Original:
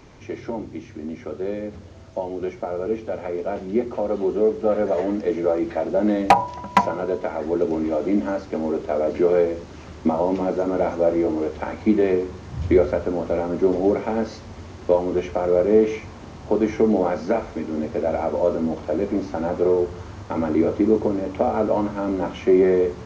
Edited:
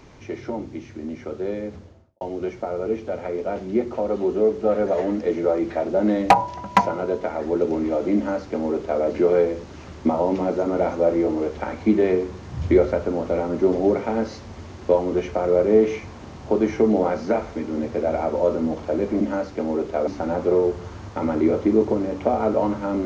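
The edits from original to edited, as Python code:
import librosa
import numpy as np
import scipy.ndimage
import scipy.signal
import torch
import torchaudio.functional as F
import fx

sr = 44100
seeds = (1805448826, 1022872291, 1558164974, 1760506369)

y = fx.studio_fade_out(x, sr, start_s=1.68, length_s=0.53)
y = fx.edit(y, sr, fx.duplicate(start_s=8.16, length_s=0.86, to_s=19.21), tone=tone)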